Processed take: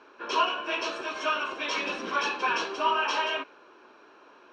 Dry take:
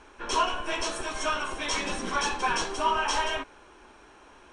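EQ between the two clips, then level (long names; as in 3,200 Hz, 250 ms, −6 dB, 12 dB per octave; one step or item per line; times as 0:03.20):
dynamic equaliser 2,700 Hz, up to +6 dB, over −45 dBFS, Q 1.8
loudspeaker in its box 320–4,500 Hz, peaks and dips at 800 Hz −7 dB, 2,000 Hz −9 dB, 3,300 Hz −7 dB
+2.0 dB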